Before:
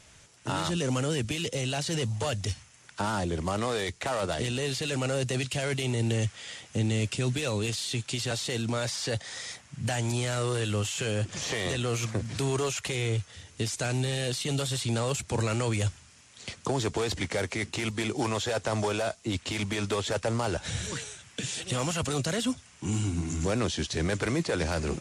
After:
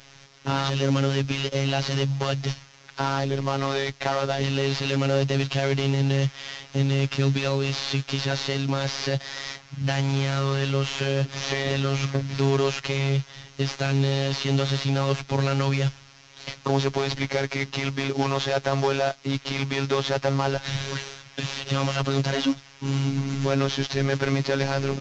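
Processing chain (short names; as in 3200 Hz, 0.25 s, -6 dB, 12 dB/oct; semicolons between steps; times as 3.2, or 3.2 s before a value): CVSD 32 kbps; robotiser 137 Hz; gain +7.5 dB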